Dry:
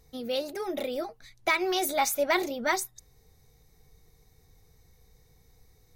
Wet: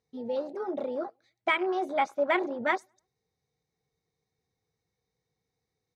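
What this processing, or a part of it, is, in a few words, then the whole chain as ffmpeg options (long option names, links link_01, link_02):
over-cleaned archive recording: -filter_complex "[0:a]asettb=1/sr,asplit=3[link_01][link_02][link_03];[link_01]atrim=end=1.524[link_04];[link_02]atrim=start=1.52:end=2.66,asetpts=PTS-STARTPTS,afade=type=in:duration=0.004:curve=qsin,afade=type=out:start_time=1.136:duration=0.004:curve=qsin,highshelf=frequency=5600:gain=-5.5[link_05];[link_03]atrim=start=2.656[link_06];[link_04][link_05]acrossfade=duration=0.004:curve1=hsin:curve2=qsin[link_07];[link_07][link_06]acrossfade=duration=0.004:curve1=qsin:curve2=hsin,highpass=140,lowpass=5600,asplit=2[link_08][link_09];[link_09]adelay=103,lowpass=frequency=1900:poles=1,volume=-21dB,asplit=2[link_10][link_11];[link_11]adelay=103,lowpass=frequency=1900:poles=1,volume=0.43,asplit=2[link_12][link_13];[link_13]adelay=103,lowpass=frequency=1900:poles=1,volume=0.43[link_14];[link_08][link_10][link_12][link_14]amix=inputs=4:normalize=0,afwtdn=0.02"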